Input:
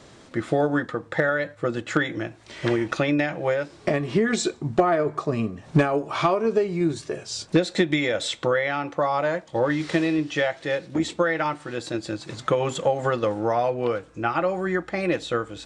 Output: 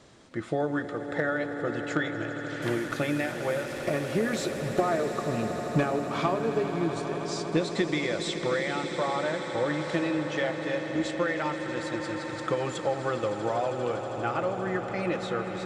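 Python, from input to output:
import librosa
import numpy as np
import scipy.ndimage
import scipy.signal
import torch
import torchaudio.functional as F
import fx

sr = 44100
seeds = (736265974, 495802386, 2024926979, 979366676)

y = fx.delta_mod(x, sr, bps=64000, step_db=-32.0, at=(2.62, 4.8))
y = fx.echo_swell(y, sr, ms=80, loudest=8, wet_db=-14.5)
y = y * librosa.db_to_amplitude(-6.5)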